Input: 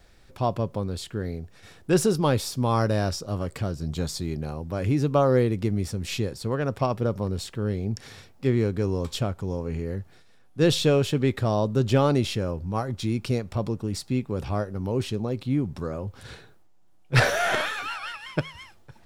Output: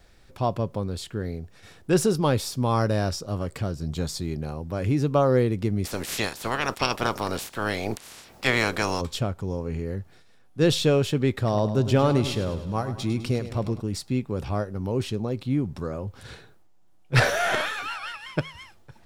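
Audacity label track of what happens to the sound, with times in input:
5.840000	9.000000	spectral limiter ceiling under each frame's peak by 28 dB
11.370000	13.800000	feedback echo 0.103 s, feedback 54%, level -12 dB

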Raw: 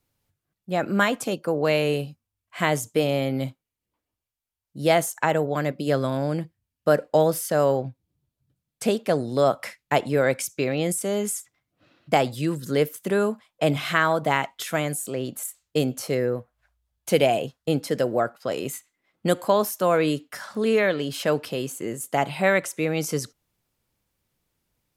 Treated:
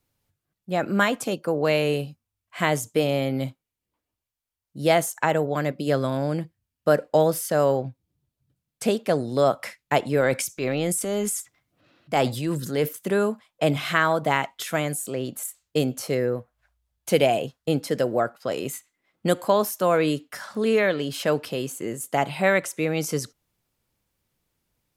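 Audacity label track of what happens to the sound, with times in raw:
10.200000	12.930000	transient shaper attack -6 dB, sustain +5 dB

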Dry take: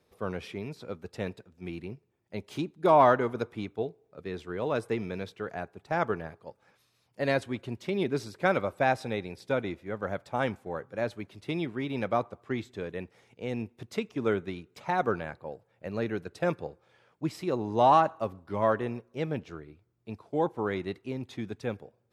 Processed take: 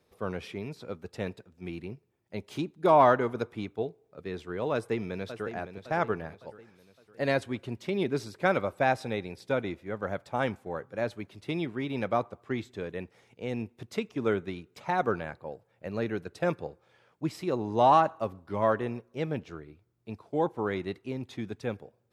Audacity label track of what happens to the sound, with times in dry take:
4.730000	5.510000	echo throw 0.56 s, feedback 45%, level -10.5 dB

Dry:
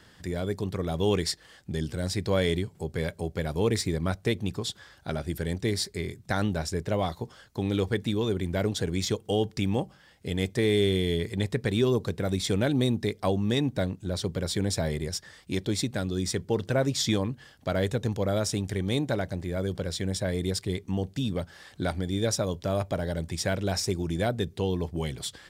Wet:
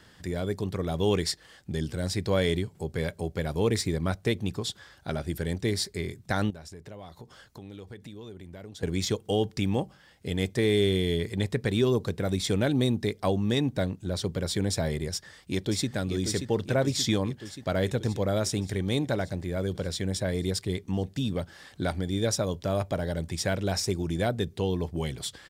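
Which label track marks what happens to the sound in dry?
6.500000	8.830000	compressor 4:1, threshold -43 dBFS
15.130000	15.900000	echo throw 0.58 s, feedback 70%, level -7.5 dB

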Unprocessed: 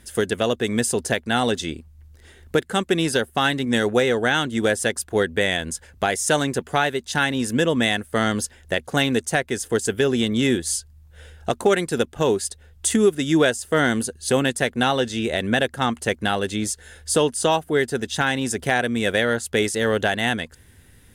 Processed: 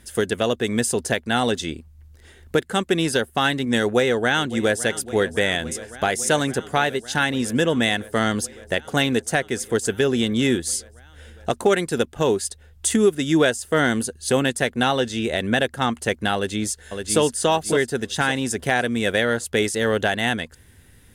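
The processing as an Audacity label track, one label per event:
3.800000	4.840000	echo throw 0.56 s, feedback 85%, level -16.5 dB
16.350000	17.200000	echo throw 0.56 s, feedback 30%, level -5.5 dB

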